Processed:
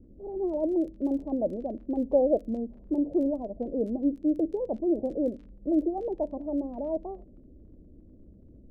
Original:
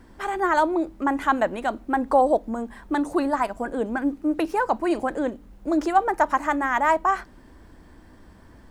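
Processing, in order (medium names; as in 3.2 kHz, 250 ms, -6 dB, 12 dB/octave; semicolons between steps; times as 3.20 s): elliptic low-pass 590 Hz, stop band 60 dB; crackle 26 per s -41 dBFS; level-controlled noise filter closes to 400 Hz, open at -22 dBFS; trim -1.5 dB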